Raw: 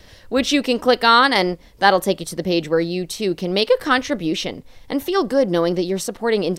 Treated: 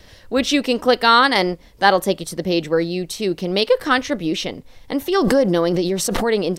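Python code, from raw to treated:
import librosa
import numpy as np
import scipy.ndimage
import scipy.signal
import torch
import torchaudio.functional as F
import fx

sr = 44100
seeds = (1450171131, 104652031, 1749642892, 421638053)

y = fx.pre_swell(x, sr, db_per_s=24.0, at=(5.11, 6.23), fade=0.02)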